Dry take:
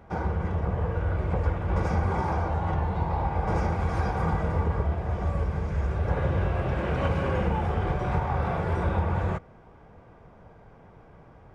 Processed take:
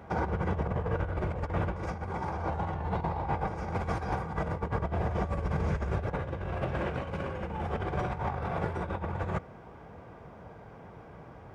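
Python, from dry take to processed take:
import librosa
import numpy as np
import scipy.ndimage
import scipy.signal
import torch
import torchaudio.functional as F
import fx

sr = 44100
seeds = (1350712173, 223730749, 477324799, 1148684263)

y = scipy.signal.sosfilt(scipy.signal.butter(2, 53.0, 'highpass', fs=sr, output='sos'), x)
y = fx.low_shelf(y, sr, hz=120.0, db=-2.5)
y = fx.over_compress(y, sr, threshold_db=-31.0, ratio=-0.5)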